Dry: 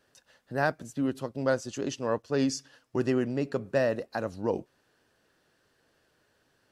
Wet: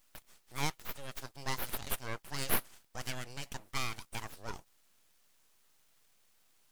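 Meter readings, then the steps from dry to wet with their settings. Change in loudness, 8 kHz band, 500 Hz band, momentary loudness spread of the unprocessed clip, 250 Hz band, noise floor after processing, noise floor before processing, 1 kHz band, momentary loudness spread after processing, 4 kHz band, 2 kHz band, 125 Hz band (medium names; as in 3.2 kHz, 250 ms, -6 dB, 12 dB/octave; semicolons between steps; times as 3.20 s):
-9.0 dB, +0.5 dB, -19.0 dB, 7 LU, -18.0 dB, -69 dBFS, -71 dBFS, -6.0 dB, 13 LU, +1.5 dB, -5.5 dB, -8.5 dB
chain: pre-emphasis filter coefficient 0.97; full-wave rectifier; trim +11 dB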